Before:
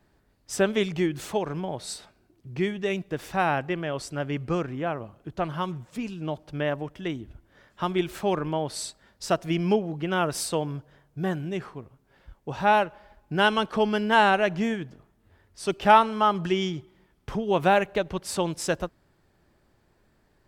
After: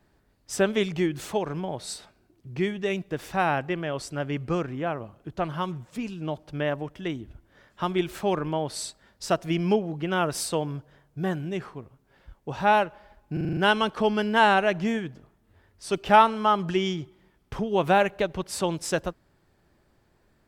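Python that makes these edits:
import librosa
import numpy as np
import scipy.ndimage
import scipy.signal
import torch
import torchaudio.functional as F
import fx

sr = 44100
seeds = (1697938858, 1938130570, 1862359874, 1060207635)

y = fx.edit(x, sr, fx.stutter(start_s=13.33, slice_s=0.04, count=7), tone=tone)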